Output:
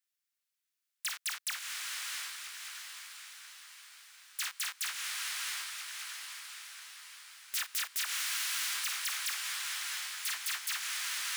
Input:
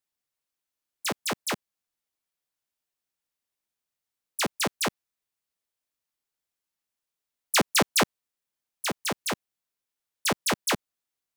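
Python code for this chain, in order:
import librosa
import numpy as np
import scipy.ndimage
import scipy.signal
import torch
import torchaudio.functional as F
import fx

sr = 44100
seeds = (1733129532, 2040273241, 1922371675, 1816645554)

y = fx.block_float(x, sr, bits=3)
y = fx.doubler(y, sr, ms=48.0, db=-10.0)
y = fx.echo_diffused(y, sr, ms=679, feedback_pct=54, wet_db=-5.5)
y = 10.0 ** (-28.0 / 20.0) * (np.abs((y / 10.0 ** (-28.0 / 20.0) + 3.0) % 4.0 - 2.0) - 1.0)
y = scipy.signal.sosfilt(scipy.signal.butter(4, 1400.0, 'highpass', fs=sr, output='sos'), y)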